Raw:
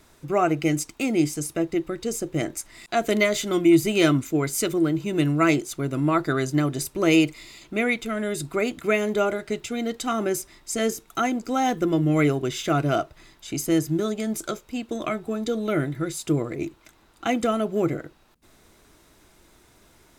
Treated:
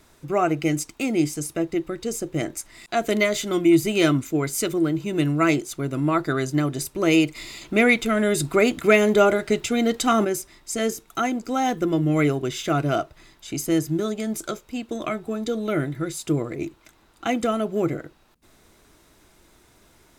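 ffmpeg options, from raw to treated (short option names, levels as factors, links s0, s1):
-filter_complex "[0:a]asettb=1/sr,asplit=3[s0][s1][s2];[s0]atrim=end=7.354[s3];[s1]atrim=start=7.35:end=10.25,asetpts=PTS-STARTPTS,afade=t=in:d=0.004:c=qsin,afade=t=out:st=2.896:d=0.004:c=qsin,acontrast=66[s4];[s2]atrim=start=10.246[s5];[s3][s4]acrossfade=d=0.004:c1=hsin:c2=qsin[s6];[s6][s5]acrossfade=d=0.004:c1=qsin:c2=hsin"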